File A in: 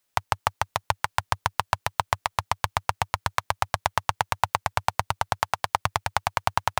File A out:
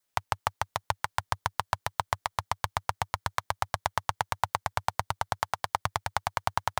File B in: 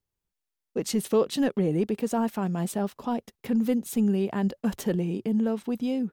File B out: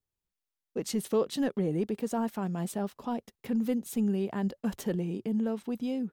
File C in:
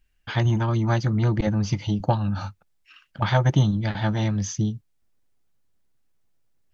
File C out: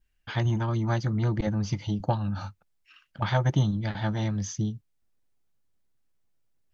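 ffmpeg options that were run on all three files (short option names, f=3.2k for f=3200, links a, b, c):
-af "adynamicequalizer=threshold=0.002:dfrequency=2600:dqfactor=5.4:tfrequency=2600:tqfactor=5.4:attack=5:release=100:ratio=0.375:range=2.5:mode=cutabove:tftype=bell,volume=-4.5dB"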